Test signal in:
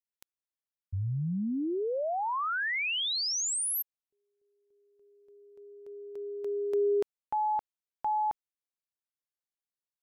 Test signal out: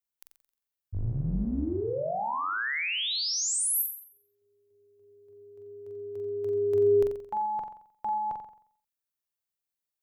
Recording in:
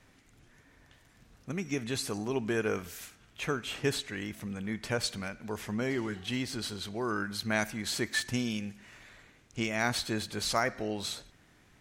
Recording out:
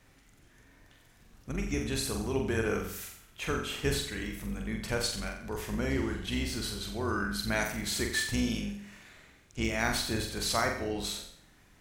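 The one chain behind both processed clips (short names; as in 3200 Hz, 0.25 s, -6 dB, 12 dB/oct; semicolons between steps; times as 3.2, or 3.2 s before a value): octaver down 2 oct, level -2 dB; high shelf 12000 Hz +9.5 dB; on a send: flutter echo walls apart 7.6 m, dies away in 0.57 s; on the sum: gain -1.5 dB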